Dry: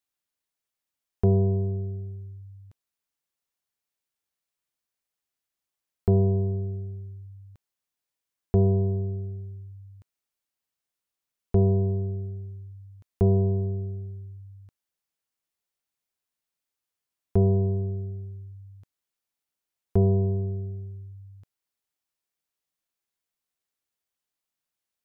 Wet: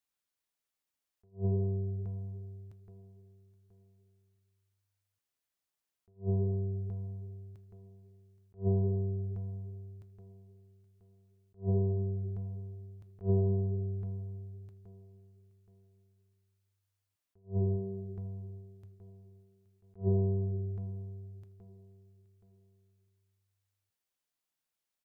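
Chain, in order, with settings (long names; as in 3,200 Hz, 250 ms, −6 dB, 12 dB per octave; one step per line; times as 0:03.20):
0:17.74–0:20.01: hum removal 48.71 Hz, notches 3
in parallel at −1 dB: downward compressor 10 to 1, threshold −33 dBFS, peak gain reduction 16 dB
on the sum: far-end echo of a speakerphone 80 ms, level −22 dB
flanger 0.41 Hz, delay 6.3 ms, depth 6.6 ms, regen −81%
on a send: repeating echo 823 ms, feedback 33%, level −19.5 dB
on the sum: level that may rise only so fast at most 270 dB per second
level −3 dB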